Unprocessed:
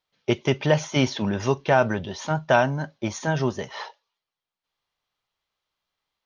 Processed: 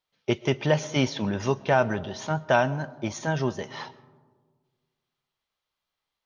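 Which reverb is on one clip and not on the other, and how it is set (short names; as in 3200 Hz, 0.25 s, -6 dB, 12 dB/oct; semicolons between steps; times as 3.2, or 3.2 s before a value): digital reverb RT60 1.6 s, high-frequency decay 0.25×, pre-delay 85 ms, DRR 19.5 dB; gain -2.5 dB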